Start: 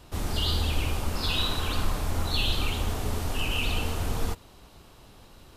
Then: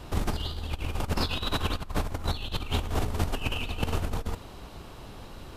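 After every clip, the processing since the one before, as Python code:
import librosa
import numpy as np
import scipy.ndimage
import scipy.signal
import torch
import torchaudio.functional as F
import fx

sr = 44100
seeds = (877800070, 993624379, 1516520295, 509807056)

y = fx.high_shelf(x, sr, hz=3800.0, db=-7.0)
y = fx.over_compress(y, sr, threshold_db=-31.0, ratio=-0.5)
y = F.gain(torch.from_numpy(y), 3.0).numpy()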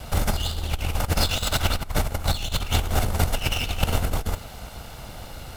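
y = fx.lower_of_two(x, sr, delay_ms=1.4)
y = fx.high_shelf(y, sr, hz=7900.0, db=8.5)
y = F.gain(torch.from_numpy(y), 6.5).numpy()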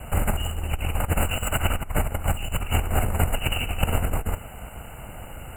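y = fx.brickwall_bandstop(x, sr, low_hz=3000.0, high_hz=7000.0)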